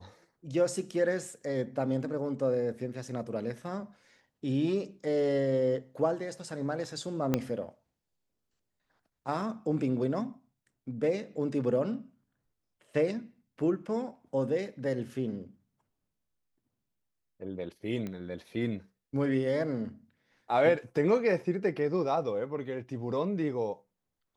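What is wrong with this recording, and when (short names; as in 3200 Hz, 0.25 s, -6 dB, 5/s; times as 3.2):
7.34 pop -13 dBFS
18.07 pop -25 dBFS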